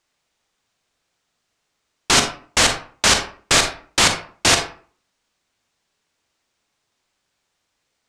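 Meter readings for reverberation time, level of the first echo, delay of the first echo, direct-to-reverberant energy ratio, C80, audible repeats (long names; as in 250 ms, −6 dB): 0.45 s, no echo audible, no echo audible, 5.5 dB, 12.5 dB, no echo audible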